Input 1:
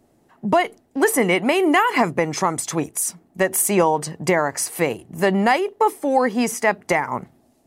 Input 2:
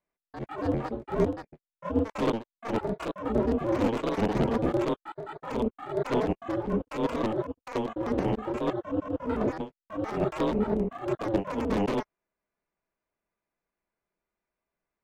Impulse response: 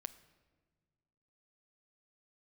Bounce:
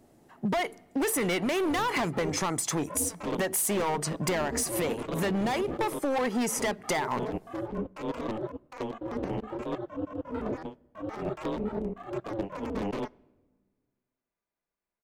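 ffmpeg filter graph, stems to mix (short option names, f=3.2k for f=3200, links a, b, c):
-filter_complex "[0:a]volume=19dB,asoftclip=hard,volume=-19dB,volume=-1.5dB,asplit=2[a][b];[b]volume=-11dB[c];[1:a]adelay=1050,volume=-7dB,asplit=2[d][e];[e]volume=-6dB[f];[2:a]atrim=start_sample=2205[g];[c][f]amix=inputs=2:normalize=0[h];[h][g]afir=irnorm=-1:irlink=0[i];[a][d][i]amix=inputs=3:normalize=0,acompressor=threshold=-26dB:ratio=6"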